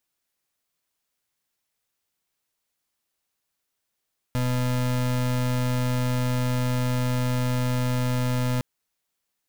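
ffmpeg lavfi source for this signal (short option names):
-f lavfi -i "aevalsrc='0.0631*(2*lt(mod(125*t,1),0.33)-1)':d=4.26:s=44100"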